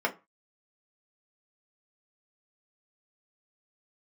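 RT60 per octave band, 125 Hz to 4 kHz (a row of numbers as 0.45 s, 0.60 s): 0.35 s, 0.25 s, 0.25 s, 0.30 s, 0.25 s, 0.20 s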